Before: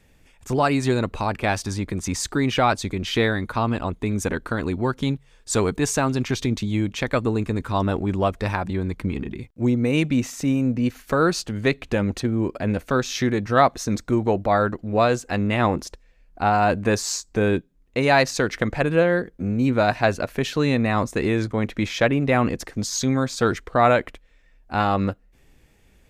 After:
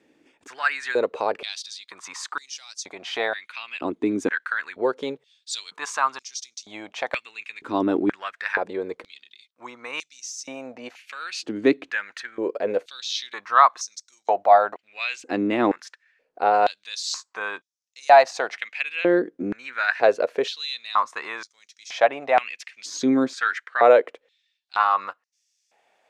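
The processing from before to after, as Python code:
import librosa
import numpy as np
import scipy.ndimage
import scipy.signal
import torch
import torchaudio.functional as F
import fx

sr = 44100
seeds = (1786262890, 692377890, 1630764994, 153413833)

y = fx.air_absorb(x, sr, metres=67.0)
y = fx.filter_held_highpass(y, sr, hz=2.1, low_hz=310.0, high_hz=5700.0)
y = y * librosa.db_to_amplitude(-3.0)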